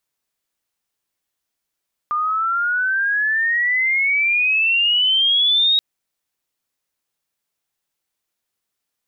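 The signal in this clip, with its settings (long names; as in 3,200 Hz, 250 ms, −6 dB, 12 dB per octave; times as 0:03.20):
glide logarithmic 1,200 Hz → 3,800 Hz −17.5 dBFS → −12.5 dBFS 3.68 s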